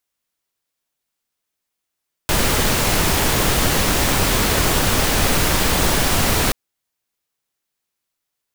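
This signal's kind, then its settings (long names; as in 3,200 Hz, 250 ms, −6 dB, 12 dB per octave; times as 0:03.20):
noise pink, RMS −17 dBFS 4.23 s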